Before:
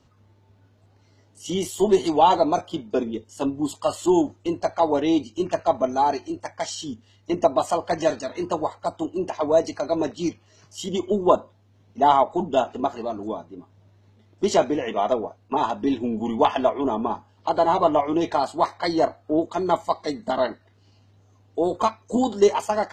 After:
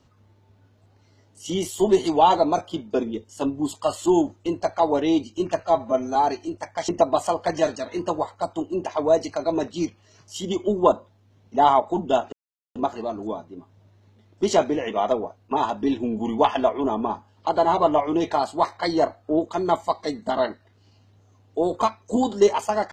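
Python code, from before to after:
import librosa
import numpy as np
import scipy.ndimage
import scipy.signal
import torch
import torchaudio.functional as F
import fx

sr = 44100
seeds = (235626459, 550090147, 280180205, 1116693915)

y = fx.edit(x, sr, fx.stretch_span(start_s=5.63, length_s=0.35, factor=1.5),
    fx.cut(start_s=6.71, length_s=0.61),
    fx.insert_silence(at_s=12.76, length_s=0.43), tone=tone)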